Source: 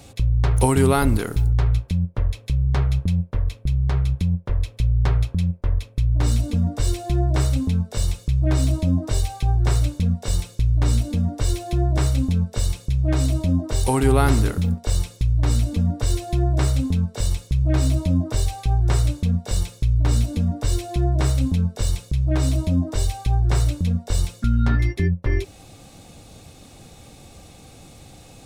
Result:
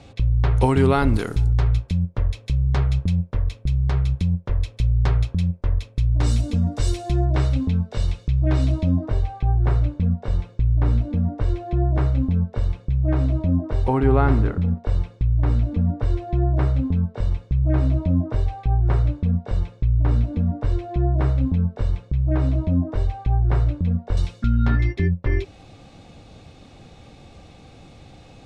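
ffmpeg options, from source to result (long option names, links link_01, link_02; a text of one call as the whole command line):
ffmpeg -i in.wav -af "asetnsamples=nb_out_samples=441:pad=0,asendcmd='1.14 lowpass f 7500;7.25 lowpass f 3500;9.06 lowpass f 1700;24.17 lowpass f 3900',lowpass=3800" out.wav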